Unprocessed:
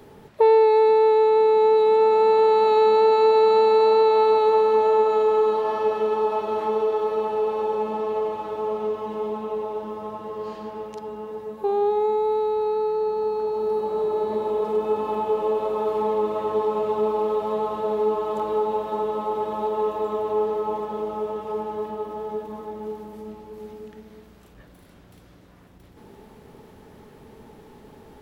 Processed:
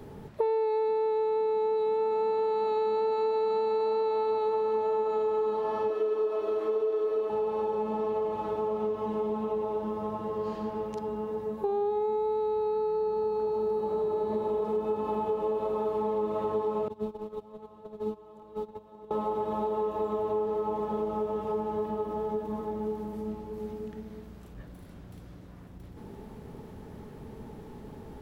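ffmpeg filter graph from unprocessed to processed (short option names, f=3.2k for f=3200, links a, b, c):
-filter_complex "[0:a]asettb=1/sr,asplit=3[a][b][c];[a]atrim=end=5.904[d];[b]atrim=start=5.9:end=7.3,asetpts=PTS-STARTPTS,afade=t=in:d=0.004:c=qsin,afade=t=out:st=1.396:d=0.004:c=qsin,lowshelf=f=250:t=q:w=3:g=-8,bandreject=f=860:w=8[e];[c]atrim=start=7.296[f];[d][e]acrossfade=d=0.004:c1=hsin:c2=qsin[g];[g][f]acrossfade=d=0.004:c1=qsin:c2=hsin,asettb=1/sr,asplit=3[h][i][j];[h]atrim=end=16.884[k];[i]atrim=start=16.88:end=19.11,asetpts=PTS-STARTPTS,afade=t=in:d=0.004:c=qsin,afade=t=out:st=2.226:d=0.004:c=qsin,agate=range=-21dB:threshold=-22dB:ratio=16:release=100:detection=peak,acrossover=split=270|3000[l][m][n];[m]acompressor=threshold=-55dB:ratio=1.5:attack=3.2:release=140:knee=2.83:detection=peak[o];[l][o][n]amix=inputs=3:normalize=0[p];[j]atrim=start=19.106[q];[k][p]acrossfade=d=0.004:c1=hsin:c2=qsin[r];[r][q]acrossfade=d=0.004:c1=qsin:c2=hsin,bass=f=250:g=6,treble=f=4k:g=5,acompressor=threshold=-27dB:ratio=4,highshelf=f=2.5k:g=-8.5"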